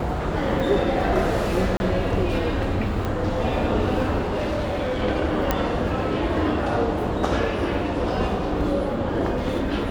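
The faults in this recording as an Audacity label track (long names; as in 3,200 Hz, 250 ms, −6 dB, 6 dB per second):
0.600000	0.600000	drop-out 2.5 ms
1.770000	1.800000	drop-out 30 ms
3.050000	3.050000	click −14 dBFS
4.210000	5.030000	clipping −21.5 dBFS
5.510000	5.510000	click −6 dBFS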